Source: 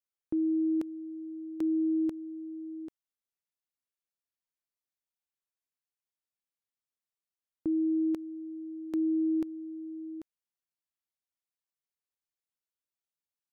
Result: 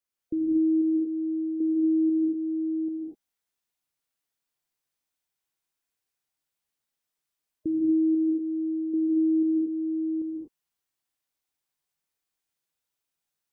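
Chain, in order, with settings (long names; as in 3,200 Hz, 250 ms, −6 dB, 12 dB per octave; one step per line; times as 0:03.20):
gate on every frequency bin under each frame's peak −25 dB strong
reverb whose tail is shaped and stops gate 270 ms rising, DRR −2.5 dB
speech leveller within 4 dB 0.5 s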